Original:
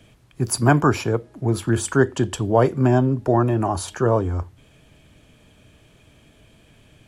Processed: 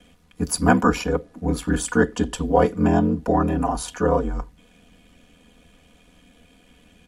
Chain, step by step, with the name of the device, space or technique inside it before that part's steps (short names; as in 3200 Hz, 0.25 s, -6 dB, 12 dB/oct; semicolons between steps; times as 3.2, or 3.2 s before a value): ring-modulated robot voice (ring modulator 41 Hz; comb 4.1 ms, depth 88%)